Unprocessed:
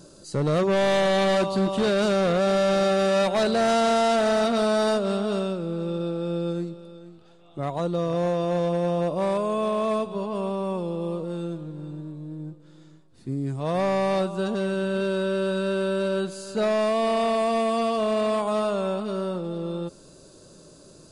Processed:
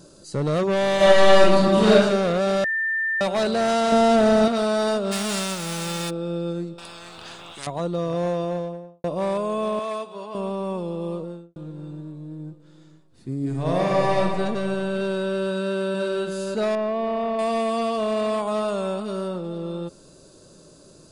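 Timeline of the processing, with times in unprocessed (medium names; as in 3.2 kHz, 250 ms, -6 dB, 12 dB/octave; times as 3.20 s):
0.96–1.94 s: reverb throw, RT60 0.83 s, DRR -7 dB
2.64–3.21 s: bleep 1.79 kHz -21 dBFS
3.92–4.48 s: bass shelf 460 Hz +10.5 dB
5.11–6.09 s: formants flattened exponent 0.3
6.78–7.67 s: spectrum-flattening compressor 10:1
8.31–9.04 s: studio fade out
9.79–10.35 s: high-pass 770 Hz 6 dB/octave
11.15–11.56 s: studio fade out
13.37–14.19 s: reverb throw, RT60 2.6 s, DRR -2 dB
15.44–16.04 s: echo throw 500 ms, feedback 15%, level -5.5 dB
16.75–17.39 s: tape spacing loss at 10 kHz 31 dB
18.68–19.28 s: treble shelf 8.9 kHz +9.5 dB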